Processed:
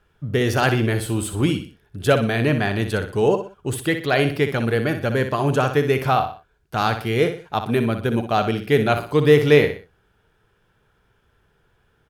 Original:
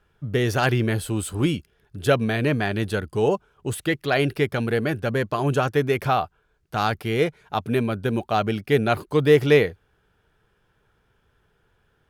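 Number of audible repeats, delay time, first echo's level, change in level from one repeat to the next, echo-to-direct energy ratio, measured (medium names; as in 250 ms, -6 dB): 3, 61 ms, -9.0 dB, -8.5 dB, -8.5 dB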